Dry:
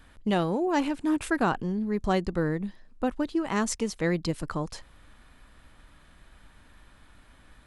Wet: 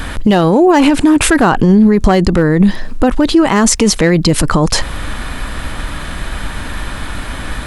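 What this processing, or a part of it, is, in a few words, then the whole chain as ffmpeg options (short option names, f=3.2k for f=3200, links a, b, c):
loud club master: -af "acompressor=threshold=-35dB:ratio=1.5,asoftclip=type=hard:threshold=-22dB,alimiter=level_in=33.5dB:limit=-1dB:release=50:level=0:latency=1,volume=-1dB"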